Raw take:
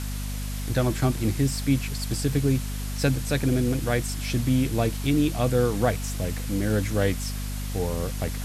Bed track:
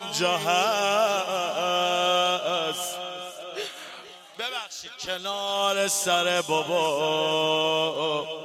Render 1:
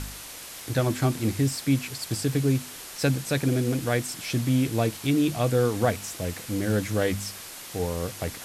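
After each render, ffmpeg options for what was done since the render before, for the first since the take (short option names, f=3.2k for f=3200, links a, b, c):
-af "bandreject=f=50:t=h:w=4,bandreject=f=100:t=h:w=4,bandreject=f=150:t=h:w=4,bandreject=f=200:t=h:w=4,bandreject=f=250:t=h:w=4"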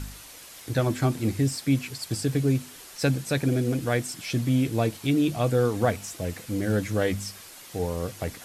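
-af "afftdn=nr=6:nf=-41"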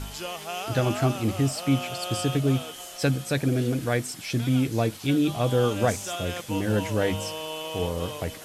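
-filter_complex "[1:a]volume=-11dB[a];[0:a][a]amix=inputs=2:normalize=0"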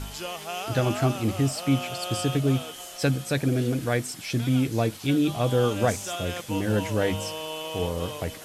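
-af anull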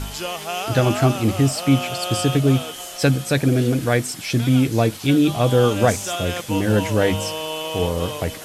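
-af "volume=6.5dB"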